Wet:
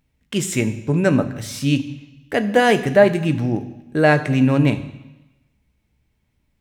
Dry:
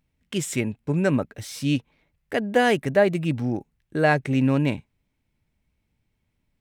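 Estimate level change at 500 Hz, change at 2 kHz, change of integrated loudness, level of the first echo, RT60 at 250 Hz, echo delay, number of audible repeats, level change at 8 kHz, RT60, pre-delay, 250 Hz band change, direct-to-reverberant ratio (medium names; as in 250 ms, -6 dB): +5.5 dB, +4.5 dB, +5.0 dB, no echo, 1.0 s, no echo, no echo, +5.0 dB, 1.0 s, 8 ms, +5.0 dB, 9.0 dB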